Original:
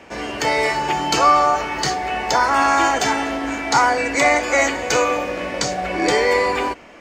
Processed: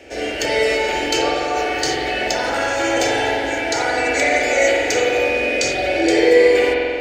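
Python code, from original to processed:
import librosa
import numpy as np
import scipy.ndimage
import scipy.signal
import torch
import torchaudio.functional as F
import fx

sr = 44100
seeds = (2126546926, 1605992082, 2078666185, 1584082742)

p1 = fx.over_compress(x, sr, threshold_db=-22.0, ratio=-1.0)
p2 = x + F.gain(torch.from_numpy(p1), -1.5).numpy()
p3 = fx.fixed_phaser(p2, sr, hz=440.0, stages=4)
p4 = fx.rev_spring(p3, sr, rt60_s=2.3, pass_ms=(45,), chirp_ms=45, drr_db=-4.5)
y = F.gain(torch.from_numpy(p4), -3.5).numpy()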